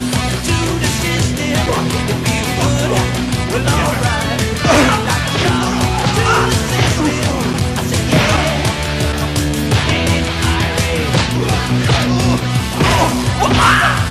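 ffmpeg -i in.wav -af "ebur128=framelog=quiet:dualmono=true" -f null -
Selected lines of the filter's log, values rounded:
Integrated loudness:
  I:         -11.5 LUFS
  Threshold: -21.5 LUFS
Loudness range:
  LRA:         1.8 LU
  Threshold: -31.6 LUFS
  LRA low:   -12.5 LUFS
  LRA high:  -10.7 LUFS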